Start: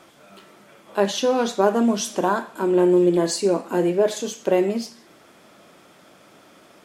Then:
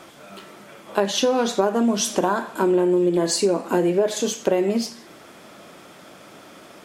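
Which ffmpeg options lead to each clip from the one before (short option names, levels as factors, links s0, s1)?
-af "acompressor=threshold=0.0794:ratio=6,volume=2"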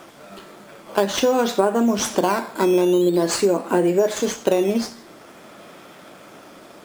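-filter_complex "[0:a]asplit=2[s0][s1];[s1]acrusher=samples=10:mix=1:aa=0.000001:lfo=1:lforange=10:lforate=0.47,volume=0.631[s2];[s0][s2]amix=inputs=2:normalize=0,lowshelf=f=160:g=-3.5,volume=0.794"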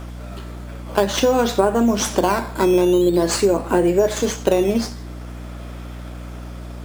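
-af "aeval=exprs='val(0)+0.0224*(sin(2*PI*60*n/s)+sin(2*PI*2*60*n/s)/2+sin(2*PI*3*60*n/s)/3+sin(2*PI*4*60*n/s)/4+sin(2*PI*5*60*n/s)/5)':c=same,volume=1.19"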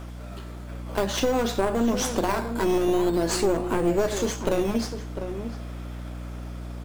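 -filter_complex "[0:a]aeval=exprs='clip(val(0),-1,0.112)':c=same,asplit=2[s0][s1];[s1]adelay=699.7,volume=0.355,highshelf=f=4000:g=-15.7[s2];[s0][s2]amix=inputs=2:normalize=0,volume=0.562"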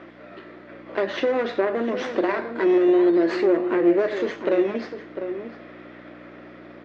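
-af "highpass=300,equalizer=f=340:t=q:w=4:g=9,equalizer=f=560:t=q:w=4:g=4,equalizer=f=860:t=q:w=4:g=-5,equalizer=f=1900:t=q:w=4:g=9,equalizer=f=3200:t=q:w=4:g=-4,lowpass=f=3600:w=0.5412,lowpass=f=3600:w=1.3066"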